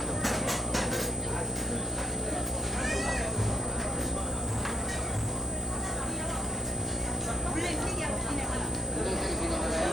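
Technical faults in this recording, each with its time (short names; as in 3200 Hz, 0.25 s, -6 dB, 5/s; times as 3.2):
buzz 60 Hz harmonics 13 -36 dBFS
crackle 260/s -36 dBFS
tone 8100 Hz -35 dBFS
4.17–6.69 clipped -26.5 dBFS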